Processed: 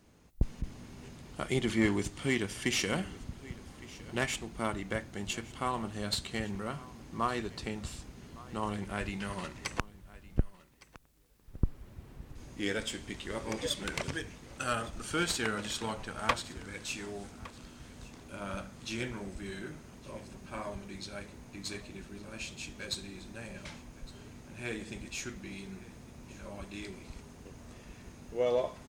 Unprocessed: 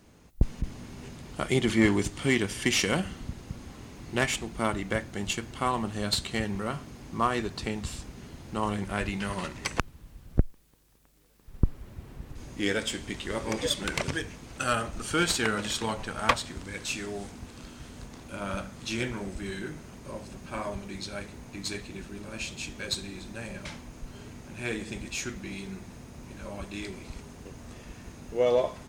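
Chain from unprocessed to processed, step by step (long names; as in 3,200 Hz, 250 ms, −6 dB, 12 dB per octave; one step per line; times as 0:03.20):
single-tap delay 1,161 ms −20 dB
level −5.5 dB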